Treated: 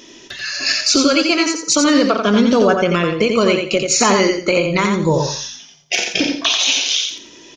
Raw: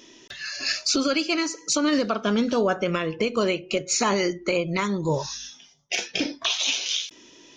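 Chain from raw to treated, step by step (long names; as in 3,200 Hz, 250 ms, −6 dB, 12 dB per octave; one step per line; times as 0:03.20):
repeating echo 87 ms, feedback 25%, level −5 dB
level +8 dB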